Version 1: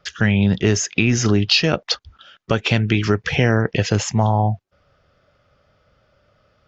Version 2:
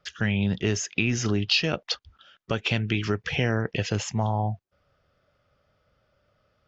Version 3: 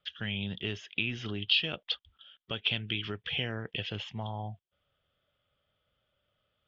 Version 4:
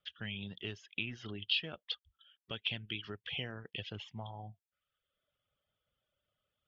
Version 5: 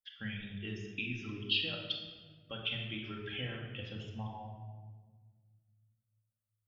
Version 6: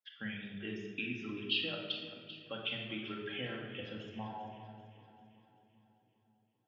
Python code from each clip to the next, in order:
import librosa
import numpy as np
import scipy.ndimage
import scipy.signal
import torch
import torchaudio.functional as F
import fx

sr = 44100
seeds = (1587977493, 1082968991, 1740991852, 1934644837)

y1 = fx.dynamic_eq(x, sr, hz=2900.0, q=2.2, threshold_db=-36.0, ratio=4.0, max_db=4)
y1 = y1 * librosa.db_to_amplitude(-8.5)
y2 = fx.ladder_lowpass(y1, sr, hz=3500.0, resonance_pct=75)
y3 = fx.dereverb_blind(y2, sr, rt60_s=0.84)
y3 = y3 * librosa.db_to_amplitude(-6.0)
y4 = fx.bin_expand(y3, sr, power=1.5)
y4 = fx.room_shoebox(y4, sr, seeds[0], volume_m3=1500.0, walls='mixed', distance_m=2.2)
y5 = scipy.signal.sosfilt(scipy.signal.butter(2, 200.0, 'highpass', fs=sr, output='sos'), y4)
y5 = fx.high_shelf(y5, sr, hz=3400.0, db=-11.0)
y5 = fx.echo_split(y5, sr, split_hz=350.0, low_ms=527, high_ms=390, feedback_pct=52, wet_db=-13.5)
y5 = y5 * librosa.db_to_amplitude(3.0)